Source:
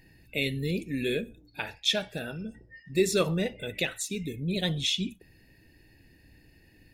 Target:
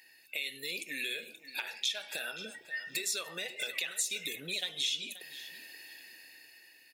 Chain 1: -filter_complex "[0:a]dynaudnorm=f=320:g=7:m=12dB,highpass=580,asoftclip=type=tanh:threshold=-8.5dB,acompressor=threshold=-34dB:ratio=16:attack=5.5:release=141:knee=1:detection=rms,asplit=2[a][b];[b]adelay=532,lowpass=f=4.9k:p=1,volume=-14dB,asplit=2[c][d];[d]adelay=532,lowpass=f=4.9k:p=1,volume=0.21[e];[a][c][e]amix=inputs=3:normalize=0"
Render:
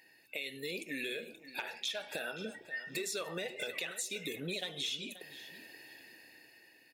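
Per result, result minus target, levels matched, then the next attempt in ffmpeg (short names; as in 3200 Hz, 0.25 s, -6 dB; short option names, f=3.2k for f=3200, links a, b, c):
soft clip: distortion +12 dB; 1000 Hz band +6.0 dB
-filter_complex "[0:a]dynaudnorm=f=320:g=7:m=12dB,highpass=580,asoftclip=type=tanh:threshold=-1dB,acompressor=threshold=-34dB:ratio=16:attack=5.5:release=141:knee=1:detection=rms,asplit=2[a][b];[b]adelay=532,lowpass=f=4.9k:p=1,volume=-14dB,asplit=2[c][d];[d]adelay=532,lowpass=f=4.9k:p=1,volume=0.21[e];[a][c][e]amix=inputs=3:normalize=0"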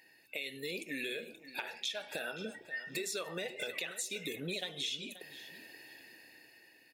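1000 Hz band +5.5 dB
-filter_complex "[0:a]dynaudnorm=f=320:g=7:m=12dB,highpass=580,asoftclip=type=tanh:threshold=-1dB,acompressor=threshold=-34dB:ratio=16:attack=5.5:release=141:knee=1:detection=rms,tiltshelf=f=1.3k:g=-7,asplit=2[a][b];[b]adelay=532,lowpass=f=4.9k:p=1,volume=-14dB,asplit=2[c][d];[d]adelay=532,lowpass=f=4.9k:p=1,volume=0.21[e];[a][c][e]amix=inputs=3:normalize=0"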